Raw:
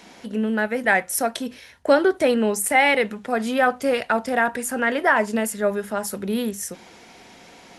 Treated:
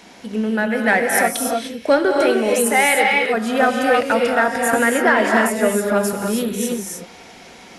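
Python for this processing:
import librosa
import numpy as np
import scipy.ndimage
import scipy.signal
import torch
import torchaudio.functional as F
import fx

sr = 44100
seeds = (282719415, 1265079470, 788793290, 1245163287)

p1 = fx.low_shelf(x, sr, hz=280.0, db=-7.5, at=(2.05, 3.34))
p2 = 10.0 ** (-14.5 / 20.0) * np.tanh(p1 / 10.0 ** (-14.5 / 20.0))
p3 = p1 + (p2 * librosa.db_to_amplitude(-6.5))
p4 = fx.rev_gated(p3, sr, seeds[0], gate_ms=330, shape='rising', drr_db=0.0)
p5 = fx.band_squash(p4, sr, depth_pct=70, at=(4.73, 6.13))
y = p5 * librosa.db_to_amplitude(-1.0)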